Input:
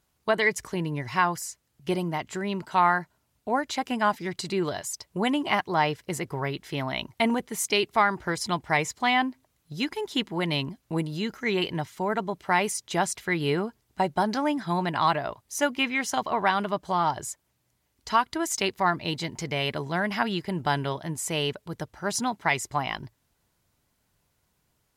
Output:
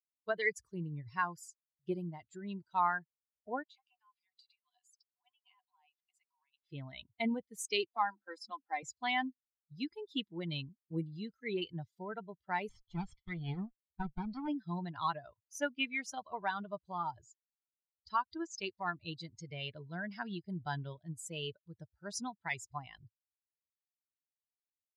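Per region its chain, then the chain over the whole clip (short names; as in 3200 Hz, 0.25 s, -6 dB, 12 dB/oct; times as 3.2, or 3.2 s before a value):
3.63–6.7 compressor 12:1, threshold -32 dBFS + rippled Chebyshev high-pass 710 Hz, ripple 9 dB
7.88–8.83 block floating point 7-bit + rippled Chebyshev high-pass 200 Hz, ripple 6 dB + comb 3.8 ms, depth 45%
12.69–14.48 minimum comb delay 0.93 ms + air absorption 110 m
17.2–19.01 LPF 6600 Hz 24 dB/oct + AM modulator 170 Hz, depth 10%
whole clip: per-bin expansion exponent 2; Bessel low-pass 7400 Hz, order 2; dynamic EQ 660 Hz, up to -3 dB, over -44 dBFS, Q 2.4; gain -6 dB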